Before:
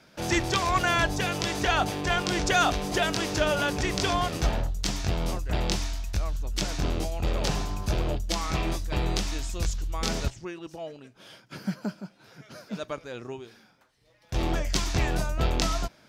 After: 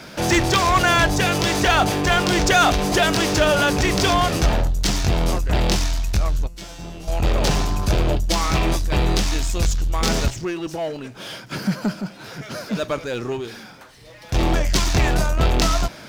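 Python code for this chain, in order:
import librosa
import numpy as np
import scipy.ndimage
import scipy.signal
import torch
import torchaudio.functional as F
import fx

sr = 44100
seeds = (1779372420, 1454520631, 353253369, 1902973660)

y = fx.power_curve(x, sr, exponent=0.7)
y = fx.comb_fb(y, sr, f0_hz=170.0, decay_s=0.78, harmonics='all', damping=0.0, mix_pct=90, at=(6.46, 7.07), fade=0.02)
y = F.gain(torch.from_numpy(y), 3.0).numpy()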